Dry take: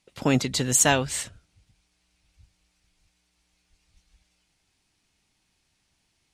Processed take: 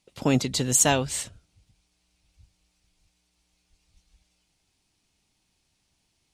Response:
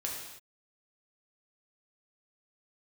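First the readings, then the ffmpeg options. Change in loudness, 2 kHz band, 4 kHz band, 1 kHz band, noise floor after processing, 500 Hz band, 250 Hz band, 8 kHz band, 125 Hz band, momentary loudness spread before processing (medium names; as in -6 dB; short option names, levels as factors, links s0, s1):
-0.5 dB, -4.0 dB, -1.0 dB, -1.0 dB, -73 dBFS, -0.5 dB, 0.0 dB, 0.0 dB, 0.0 dB, 12 LU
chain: -af "equalizer=f=1700:w=1.3:g=-5"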